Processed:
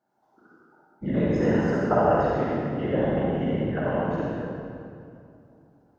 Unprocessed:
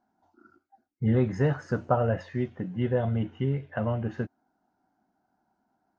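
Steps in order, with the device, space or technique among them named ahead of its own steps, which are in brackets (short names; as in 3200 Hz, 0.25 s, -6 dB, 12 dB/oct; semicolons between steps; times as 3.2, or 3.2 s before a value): whispering ghost (whisperiser; HPF 240 Hz 6 dB/oct; reverb RT60 2.5 s, pre-delay 43 ms, DRR -6.5 dB); gain -2 dB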